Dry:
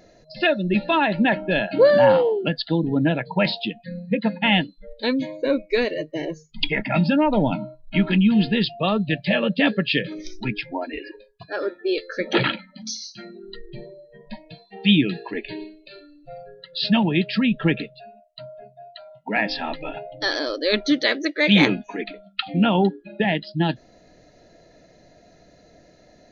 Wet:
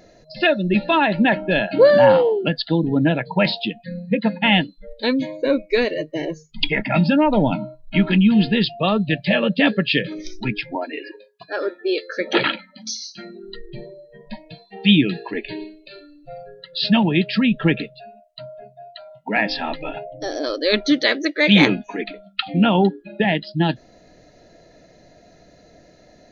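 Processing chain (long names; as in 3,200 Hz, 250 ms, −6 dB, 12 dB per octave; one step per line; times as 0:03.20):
0:10.75–0:13.18: high-pass filter 260 Hz 12 dB per octave
0:20.05–0:20.44: gain on a spectral selection 810–5,400 Hz −14 dB
level +2.5 dB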